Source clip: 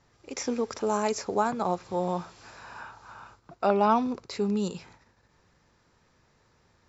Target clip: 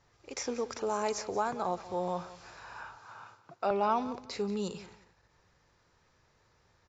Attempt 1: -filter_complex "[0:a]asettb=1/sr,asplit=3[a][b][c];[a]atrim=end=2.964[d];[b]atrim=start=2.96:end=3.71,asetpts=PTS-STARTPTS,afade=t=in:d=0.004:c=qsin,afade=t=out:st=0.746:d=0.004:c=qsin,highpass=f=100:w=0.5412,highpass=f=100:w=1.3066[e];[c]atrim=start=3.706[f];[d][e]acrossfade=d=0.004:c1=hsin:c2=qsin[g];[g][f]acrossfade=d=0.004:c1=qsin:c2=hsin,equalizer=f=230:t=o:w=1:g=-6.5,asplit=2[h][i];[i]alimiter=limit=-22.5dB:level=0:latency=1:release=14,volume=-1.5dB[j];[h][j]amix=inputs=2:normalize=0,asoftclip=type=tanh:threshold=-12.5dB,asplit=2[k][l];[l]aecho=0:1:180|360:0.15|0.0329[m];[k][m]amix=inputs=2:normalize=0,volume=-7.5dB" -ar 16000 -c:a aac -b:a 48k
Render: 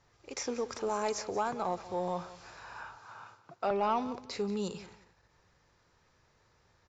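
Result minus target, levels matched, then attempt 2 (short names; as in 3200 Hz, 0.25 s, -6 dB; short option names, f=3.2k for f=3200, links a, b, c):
soft clip: distortion +17 dB
-filter_complex "[0:a]asettb=1/sr,asplit=3[a][b][c];[a]atrim=end=2.964[d];[b]atrim=start=2.96:end=3.71,asetpts=PTS-STARTPTS,afade=t=in:d=0.004:c=qsin,afade=t=out:st=0.746:d=0.004:c=qsin,highpass=f=100:w=0.5412,highpass=f=100:w=1.3066[e];[c]atrim=start=3.706[f];[d][e]acrossfade=d=0.004:c1=hsin:c2=qsin[g];[g][f]acrossfade=d=0.004:c1=qsin:c2=hsin,equalizer=f=230:t=o:w=1:g=-6.5,asplit=2[h][i];[i]alimiter=limit=-22.5dB:level=0:latency=1:release=14,volume=-1.5dB[j];[h][j]amix=inputs=2:normalize=0,asoftclip=type=tanh:threshold=-3dB,asplit=2[k][l];[l]aecho=0:1:180|360:0.15|0.0329[m];[k][m]amix=inputs=2:normalize=0,volume=-7.5dB" -ar 16000 -c:a aac -b:a 48k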